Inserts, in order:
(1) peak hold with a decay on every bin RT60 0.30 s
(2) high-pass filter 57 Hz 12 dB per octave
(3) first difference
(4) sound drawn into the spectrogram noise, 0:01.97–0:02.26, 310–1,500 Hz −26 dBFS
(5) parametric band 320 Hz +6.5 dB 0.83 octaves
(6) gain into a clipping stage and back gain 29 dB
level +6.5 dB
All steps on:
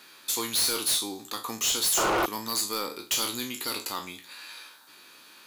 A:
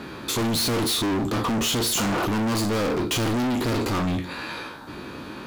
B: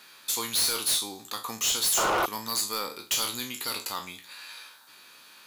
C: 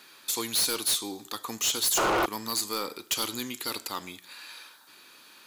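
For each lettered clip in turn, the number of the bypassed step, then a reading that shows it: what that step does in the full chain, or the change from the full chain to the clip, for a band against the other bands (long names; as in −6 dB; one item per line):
3, 125 Hz band +17.0 dB
5, 250 Hz band −4.5 dB
1, change in integrated loudness −1.0 LU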